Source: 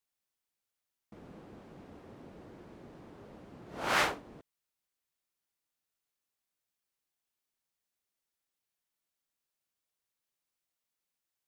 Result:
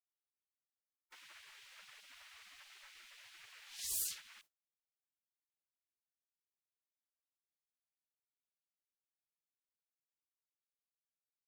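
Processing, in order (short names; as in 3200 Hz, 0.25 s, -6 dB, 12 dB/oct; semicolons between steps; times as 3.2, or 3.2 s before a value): hard clip -27 dBFS, distortion -10 dB; frequency shift -25 Hz; spectral gate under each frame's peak -25 dB weak; gain +12 dB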